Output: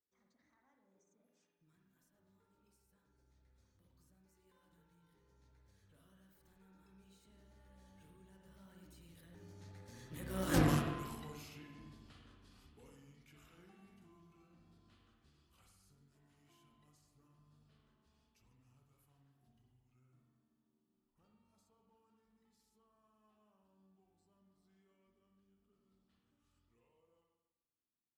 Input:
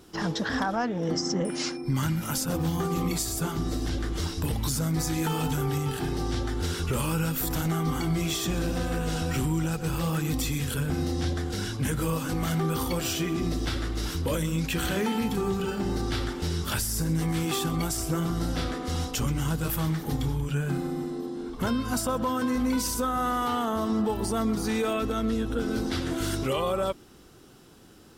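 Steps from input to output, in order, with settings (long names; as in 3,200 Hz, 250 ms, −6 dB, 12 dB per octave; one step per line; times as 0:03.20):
source passing by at 0:10.58, 49 m/s, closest 3 metres
harmonic generator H 5 −22 dB, 7 −19 dB, 8 −25 dB, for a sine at −19 dBFS
spring reverb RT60 1.1 s, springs 47/51 ms, chirp 40 ms, DRR 1.5 dB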